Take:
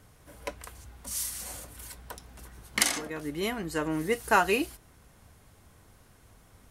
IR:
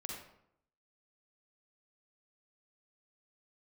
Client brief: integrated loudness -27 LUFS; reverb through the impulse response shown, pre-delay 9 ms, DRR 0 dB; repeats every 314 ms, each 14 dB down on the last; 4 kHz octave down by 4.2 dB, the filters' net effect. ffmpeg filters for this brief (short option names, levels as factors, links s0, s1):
-filter_complex "[0:a]equalizer=f=4000:t=o:g=-6,aecho=1:1:314|628:0.2|0.0399,asplit=2[s0][s1];[1:a]atrim=start_sample=2205,adelay=9[s2];[s1][s2]afir=irnorm=-1:irlink=0,volume=1.19[s3];[s0][s3]amix=inputs=2:normalize=0,volume=1.06"